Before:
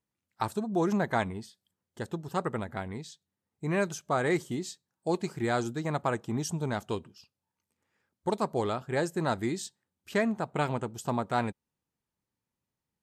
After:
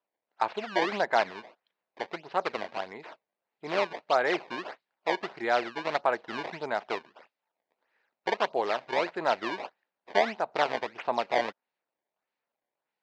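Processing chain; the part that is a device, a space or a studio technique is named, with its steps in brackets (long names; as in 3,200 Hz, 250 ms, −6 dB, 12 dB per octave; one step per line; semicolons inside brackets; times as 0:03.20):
circuit-bent sampling toy (sample-and-hold swept by an LFO 19×, swing 160% 1.6 Hz; loudspeaker in its box 580–4,100 Hz, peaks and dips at 650 Hz +3 dB, 1,200 Hz −4 dB, 3,300 Hz −5 dB)
level +5.5 dB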